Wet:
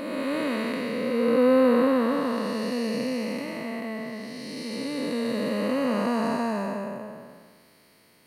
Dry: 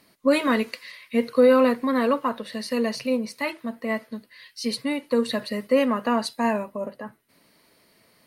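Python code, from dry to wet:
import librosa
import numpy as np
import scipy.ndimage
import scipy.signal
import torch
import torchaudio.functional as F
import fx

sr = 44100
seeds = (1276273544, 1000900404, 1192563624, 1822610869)

y = fx.spec_blur(x, sr, span_ms=652.0)
y = fx.notch(y, sr, hz=3600.0, q=27.0)
y = F.gain(torch.from_numpy(y), 3.5).numpy()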